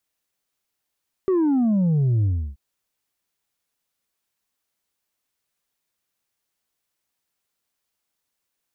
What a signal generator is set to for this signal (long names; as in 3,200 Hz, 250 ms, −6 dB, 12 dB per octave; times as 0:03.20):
bass drop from 390 Hz, over 1.28 s, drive 3 dB, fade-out 0.32 s, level −17 dB